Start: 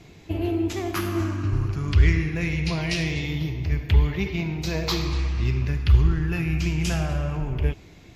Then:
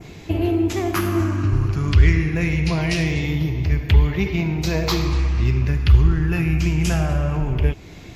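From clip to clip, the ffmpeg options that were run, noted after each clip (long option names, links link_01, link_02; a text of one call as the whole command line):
ffmpeg -i in.wav -filter_complex "[0:a]adynamicequalizer=threshold=0.00447:dfrequency=3900:dqfactor=1:tfrequency=3900:tqfactor=1:attack=5:release=100:ratio=0.375:range=3:mode=cutabove:tftype=bell,asplit=2[link_01][link_02];[link_02]acompressor=threshold=-32dB:ratio=6,volume=1dB[link_03];[link_01][link_03]amix=inputs=2:normalize=0,volume=2.5dB" out.wav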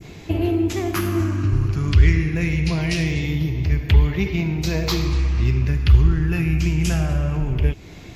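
ffmpeg -i in.wav -af "adynamicequalizer=threshold=0.0178:dfrequency=870:dqfactor=0.72:tfrequency=870:tqfactor=0.72:attack=5:release=100:ratio=0.375:range=2.5:mode=cutabove:tftype=bell" out.wav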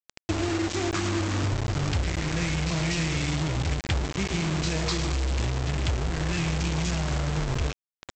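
ffmpeg -i in.wav -af "acompressor=threshold=-24dB:ratio=10,aresample=16000,acrusher=bits=4:mix=0:aa=0.000001,aresample=44100" out.wav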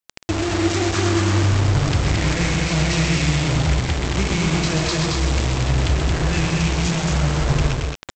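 ffmpeg -i in.wav -filter_complex "[0:a]alimiter=limit=-19.5dB:level=0:latency=1:release=192,asplit=2[link_01][link_02];[link_02]aecho=0:1:131.2|224.5:0.501|0.708[link_03];[link_01][link_03]amix=inputs=2:normalize=0,volume=7.5dB" out.wav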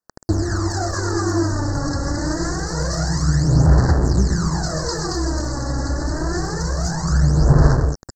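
ffmpeg -i in.wav -af "asuperstop=centerf=2800:order=12:qfactor=1.1,aphaser=in_gain=1:out_gain=1:delay=3.6:decay=0.66:speed=0.26:type=sinusoidal,volume=-3dB" out.wav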